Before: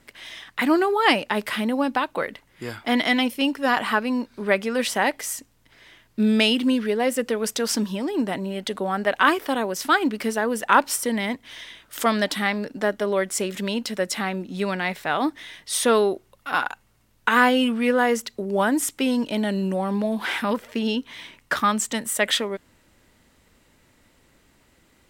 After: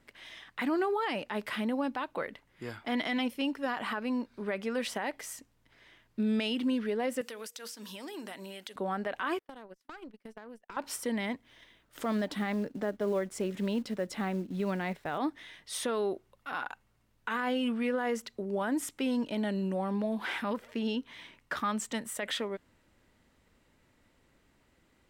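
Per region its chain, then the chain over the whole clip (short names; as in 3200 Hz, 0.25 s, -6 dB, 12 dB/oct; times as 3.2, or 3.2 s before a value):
7.21–8.76 tilt +4 dB/oct + de-hum 118.6 Hz, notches 4 + compressor, threshold -30 dBFS
9.39–10.77 gate -26 dBFS, range -34 dB + tube stage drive 17 dB, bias 0.75 + compressor 12:1, threshold -34 dBFS
11.43–15.18 gate -39 dBFS, range -6 dB + tilt shelf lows +4.5 dB, about 760 Hz + companded quantiser 6-bit
whole clip: high shelf 4400 Hz -7 dB; limiter -15.5 dBFS; gain -7.5 dB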